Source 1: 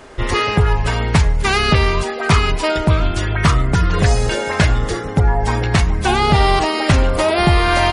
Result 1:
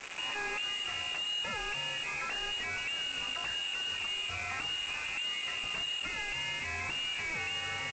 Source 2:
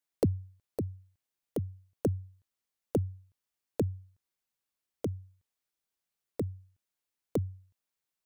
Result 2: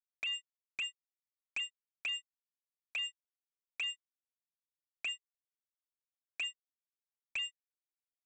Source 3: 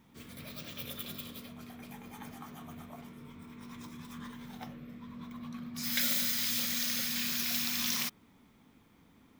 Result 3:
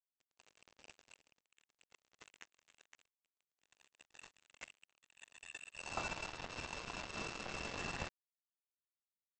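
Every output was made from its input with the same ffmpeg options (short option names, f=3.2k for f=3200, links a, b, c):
-af "lowpass=f=2.5k:t=q:w=0.5098,lowpass=f=2.5k:t=q:w=0.6013,lowpass=f=2.5k:t=q:w=0.9,lowpass=f=2.5k:t=q:w=2.563,afreqshift=-2900,bandreject=f=50:t=h:w=6,bandreject=f=100:t=h:w=6,bandreject=f=150:t=h:w=6,asubboost=boost=6:cutoff=180,acompressor=threshold=-25dB:ratio=6,alimiter=level_in=1dB:limit=-24dB:level=0:latency=1:release=98,volume=-1dB,aresample=16000,acrusher=bits=5:mix=0:aa=0.5,aresample=44100,equalizer=f=430:t=o:w=2.3:g=4.5,volume=-4dB"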